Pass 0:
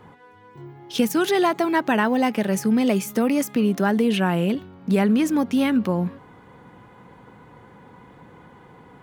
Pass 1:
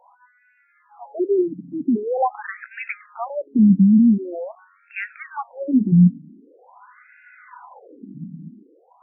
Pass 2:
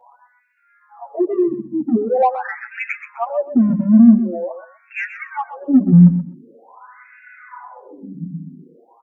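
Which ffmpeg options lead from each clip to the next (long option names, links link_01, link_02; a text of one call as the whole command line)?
ffmpeg -i in.wav -af "asubboost=boost=11.5:cutoff=120,dynaudnorm=framelen=230:gausssize=9:maxgain=14dB,afftfilt=real='re*between(b*sr/1024,210*pow(2000/210,0.5+0.5*sin(2*PI*0.45*pts/sr))/1.41,210*pow(2000/210,0.5+0.5*sin(2*PI*0.45*pts/sr))*1.41)':imag='im*between(b*sr/1024,210*pow(2000/210,0.5+0.5*sin(2*PI*0.45*pts/sr))/1.41,210*pow(2000/210,0.5+0.5*sin(2*PI*0.45*pts/sr))*1.41)':win_size=1024:overlap=0.75,volume=-1dB" out.wav
ffmpeg -i in.wav -filter_complex "[0:a]asplit=2[link_01][link_02];[link_02]asoftclip=type=tanh:threshold=-18.5dB,volume=-6dB[link_03];[link_01][link_03]amix=inputs=2:normalize=0,aecho=1:1:127|254:0.282|0.0451,asplit=2[link_04][link_05];[link_05]adelay=7.8,afreqshift=-0.37[link_06];[link_04][link_06]amix=inputs=2:normalize=1,volume=4dB" out.wav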